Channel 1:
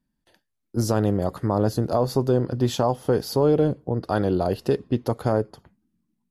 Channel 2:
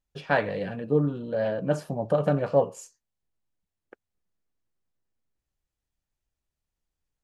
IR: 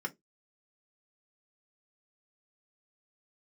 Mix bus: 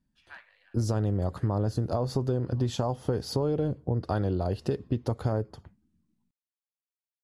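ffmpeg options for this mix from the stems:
-filter_complex "[0:a]lowpass=frequency=10000:width=0.5412,lowpass=frequency=10000:width=1.3066,equalizer=frequency=84:width_type=o:width=1.1:gain=8,volume=-2.5dB[link_01];[1:a]highpass=frequency=1100:width=0.5412,highpass=frequency=1100:width=1.3066,volume=-19.5dB[link_02];[link_01][link_02]amix=inputs=2:normalize=0,lowshelf=frequency=160:gain=3,acompressor=threshold=-24dB:ratio=6"

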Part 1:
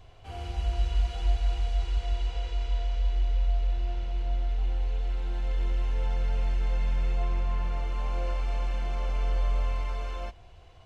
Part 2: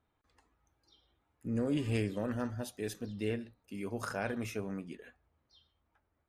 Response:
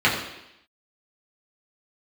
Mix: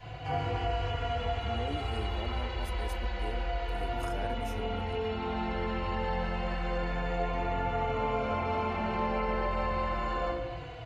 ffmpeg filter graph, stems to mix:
-filter_complex "[0:a]asplit=2[link_01][link_02];[link_02]adelay=3.6,afreqshift=-0.29[link_03];[link_01][link_03]amix=inputs=2:normalize=1,volume=2dB,asplit=2[link_04][link_05];[link_05]volume=-4.5dB[link_06];[1:a]equalizer=frequency=12000:width=0.43:gain=9,volume=-3dB[link_07];[2:a]atrim=start_sample=2205[link_08];[link_06][link_08]afir=irnorm=-1:irlink=0[link_09];[link_04][link_07][link_09]amix=inputs=3:normalize=0,acrossover=split=500|1300[link_10][link_11][link_12];[link_10]acompressor=threshold=-32dB:ratio=4[link_13];[link_11]acompressor=threshold=-31dB:ratio=4[link_14];[link_12]acompressor=threshold=-46dB:ratio=4[link_15];[link_13][link_14][link_15]amix=inputs=3:normalize=0"

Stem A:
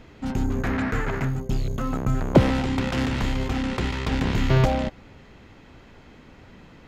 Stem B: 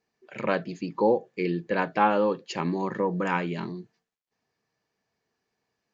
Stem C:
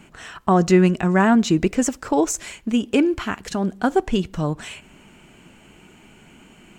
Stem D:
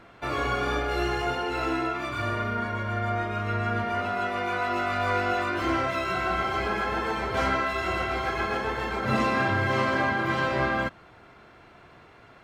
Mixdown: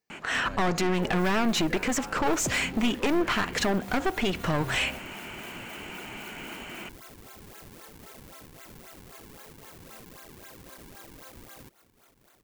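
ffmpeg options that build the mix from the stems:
ffmpeg -i stem1.wav -i stem2.wav -i stem3.wav -i stem4.wav -filter_complex "[0:a]adelay=100,volume=-16dB[link_01];[1:a]volume=-8.5dB[link_02];[2:a]asplit=2[link_03][link_04];[link_04]highpass=frequency=720:poles=1,volume=22dB,asoftclip=type=tanh:threshold=-3dB[link_05];[link_03][link_05]amix=inputs=2:normalize=0,lowpass=frequency=2800:poles=1,volume=-6dB,adelay=100,volume=-3.5dB[link_06];[3:a]highpass=340,acompressor=threshold=-32dB:ratio=6,acrusher=samples=40:mix=1:aa=0.000001:lfo=1:lforange=64:lforate=3.8,adelay=800,volume=-11.5dB[link_07];[link_02][link_07]amix=inputs=2:normalize=0,aemphasis=mode=production:type=50kf,alimiter=level_in=8.5dB:limit=-24dB:level=0:latency=1:release=19,volume=-8.5dB,volume=0dB[link_08];[link_01][link_06]amix=inputs=2:normalize=0,aeval=exprs='clip(val(0),-1,0.0631)':channel_layout=same,alimiter=limit=-16.5dB:level=0:latency=1:release=228,volume=0dB[link_09];[link_08][link_09]amix=inputs=2:normalize=0,equalizer=frequency=2100:width_type=o:width=0.77:gain=2" out.wav

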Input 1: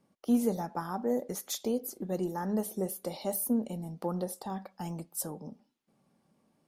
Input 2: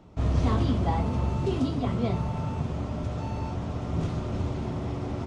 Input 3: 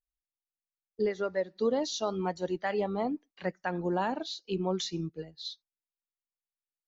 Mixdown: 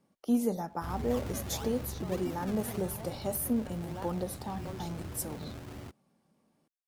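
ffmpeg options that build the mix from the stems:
ffmpeg -i stem1.wav -i stem2.wav -i stem3.wav -filter_complex "[0:a]volume=-1dB,asplit=2[link_01][link_02];[1:a]tiltshelf=frequency=1500:gain=-3.5,acrusher=samples=33:mix=1:aa=0.000001:lfo=1:lforange=33:lforate=1.7,asoftclip=type=tanh:threshold=-22dB,adelay=650,volume=-9dB[link_03];[2:a]volume=-12.5dB[link_04];[link_02]apad=whole_len=303177[link_05];[link_04][link_05]sidechaincompress=threshold=-39dB:ratio=8:attack=16:release=290[link_06];[link_01][link_03][link_06]amix=inputs=3:normalize=0" out.wav

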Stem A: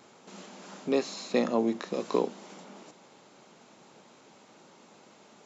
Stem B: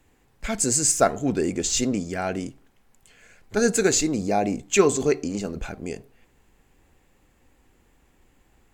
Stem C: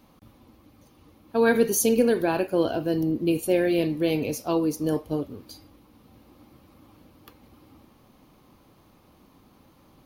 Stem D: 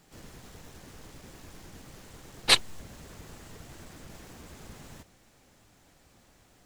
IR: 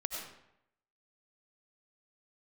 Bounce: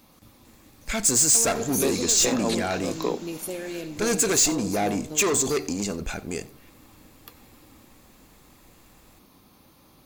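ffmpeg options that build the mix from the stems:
-filter_complex "[0:a]adelay=900,volume=0dB[link_01];[1:a]asoftclip=type=tanh:threshold=-21dB,adelay=450,volume=1dB,asplit=2[link_02][link_03];[link_03]volume=-22dB[link_04];[2:a]acompressor=threshold=-36dB:ratio=2.5,volume=-3dB,asplit=3[link_05][link_06][link_07];[link_06]volume=-10dB[link_08];[3:a]volume=-18.5dB[link_09];[link_07]apad=whole_len=280270[link_10];[link_01][link_10]sidechaingate=range=-33dB:threshold=-50dB:ratio=16:detection=peak[link_11];[4:a]atrim=start_sample=2205[link_12];[link_08][link_12]afir=irnorm=-1:irlink=0[link_13];[link_04]aecho=0:1:89:1[link_14];[link_11][link_02][link_05][link_09][link_13][link_14]amix=inputs=6:normalize=0,highshelf=frequency=2500:gain=9.5,bandreject=frequency=3000:width=16,asoftclip=type=tanh:threshold=-13dB"

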